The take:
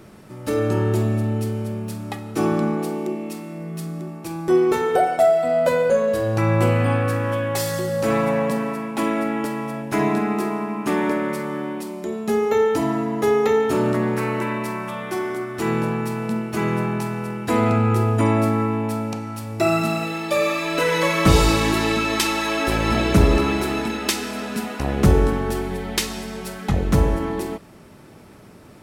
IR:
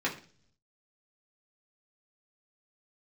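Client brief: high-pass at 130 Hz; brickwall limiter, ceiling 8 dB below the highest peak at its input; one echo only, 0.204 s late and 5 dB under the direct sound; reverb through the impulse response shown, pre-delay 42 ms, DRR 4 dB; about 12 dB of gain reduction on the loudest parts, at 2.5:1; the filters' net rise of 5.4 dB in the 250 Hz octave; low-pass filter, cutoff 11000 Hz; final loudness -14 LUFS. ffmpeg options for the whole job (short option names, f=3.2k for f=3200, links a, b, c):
-filter_complex "[0:a]highpass=130,lowpass=11k,equalizer=f=250:t=o:g=7.5,acompressor=threshold=-27dB:ratio=2.5,alimiter=limit=-19.5dB:level=0:latency=1,aecho=1:1:204:0.562,asplit=2[a][b];[1:a]atrim=start_sample=2205,adelay=42[c];[b][c]afir=irnorm=-1:irlink=0,volume=-12.5dB[d];[a][d]amix=inputs=2:normalize=0,volume=11.5dB"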